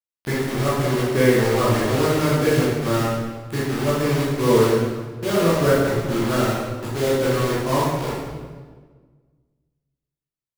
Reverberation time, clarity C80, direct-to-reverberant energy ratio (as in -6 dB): 1.5 s, 1.5 dB, -8.5 dB